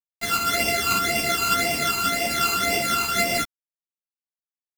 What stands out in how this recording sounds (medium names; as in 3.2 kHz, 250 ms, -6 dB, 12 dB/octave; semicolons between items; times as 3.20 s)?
a buzz of ramps at a fixed pitch in blocks of 64 samples; phasing stages 12, 1.9 Hz, lowest notch 590–1300 Hz; a quantiser's noise floor 6-bit, dither none; a shimmering, thickened sound